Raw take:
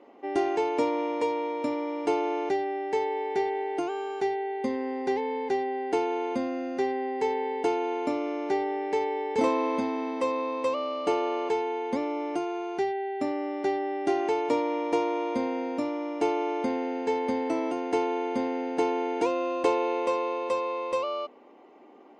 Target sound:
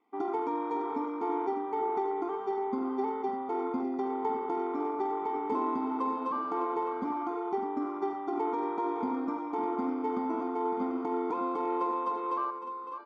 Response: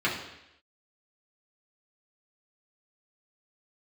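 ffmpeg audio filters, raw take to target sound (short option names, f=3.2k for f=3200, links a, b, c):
-filter_complex "[0:a]aemphasis=mode=production:type=cd,afwtdn=0.0282,lowpass=4.3k,equalizer=f=150:w=1.8:g=-8.5,bandreject=f=60:t=h:w=6,bandreject=f=120:t=h:w=6,bandreject=f=180:t=h:w=6,bandreject=f=240:t=h:w=6,bandreject=f=300:t=h:w=6,bandreject=f=360:t=h:w=6,aecho=1:1:0.9:0.92,alimiter=limit=-20dB:level=0:latency=1:release=128,atempo=1.7,asplit=2[a][b];[b]aecho=0:1:80|556|604:0.251|0.266|0.316[c];[a][c]amix=inputs=2:normalize=0,volume=-2dB"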